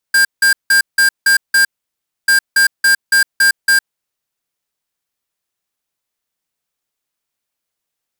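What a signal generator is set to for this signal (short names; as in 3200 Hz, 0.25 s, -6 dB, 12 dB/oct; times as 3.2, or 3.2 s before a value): beep pattern square 1600 Hz, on 0.11 s, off 0.17 s, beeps 6, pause 0.63 s, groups 2, -10 dBFS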